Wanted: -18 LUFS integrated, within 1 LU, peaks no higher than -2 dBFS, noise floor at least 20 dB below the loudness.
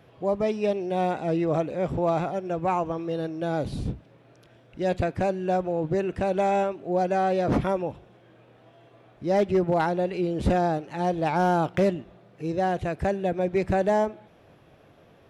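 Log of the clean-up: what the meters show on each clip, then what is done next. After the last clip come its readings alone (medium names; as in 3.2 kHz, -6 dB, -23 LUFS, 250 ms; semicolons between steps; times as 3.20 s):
clipped samples 0.3%; clipping level -15.5 dBFS; loudness -26.0 LUFS; peak level -15.5 dBFS; loudness target -18.0 LUFS
-> clip repair -15.5 dBFS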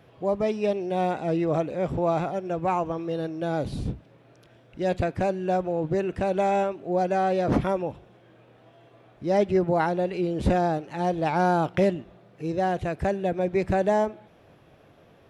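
clipped samples 0.0%; loudness -26.0 LUFS; peak level -11.5 dBFS; loudness target -18.0 LUFS
-> trim +8 dB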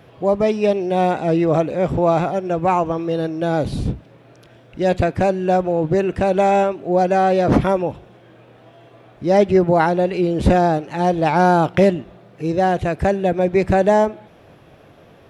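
loudness -18.0 LUFS; peak level -3.5 dBFS; noise floor -48 dBFS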